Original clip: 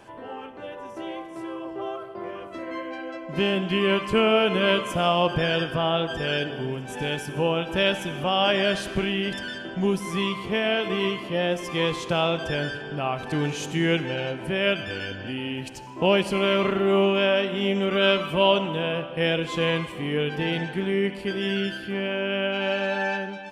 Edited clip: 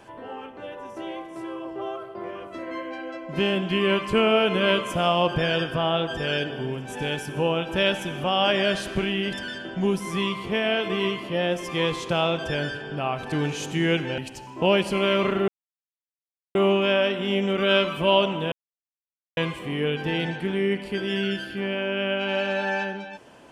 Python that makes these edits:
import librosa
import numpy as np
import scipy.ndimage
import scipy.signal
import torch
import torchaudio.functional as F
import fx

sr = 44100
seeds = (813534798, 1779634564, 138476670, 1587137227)

y = fx.edit(x, sr, fx.cut(start_s=14.18, length_s=1.4),
    fx.insert_silence(at_s=16.88, length_s=1.07),
    fx.silence(start_s=18.85, length_s=0.85), tone=tone)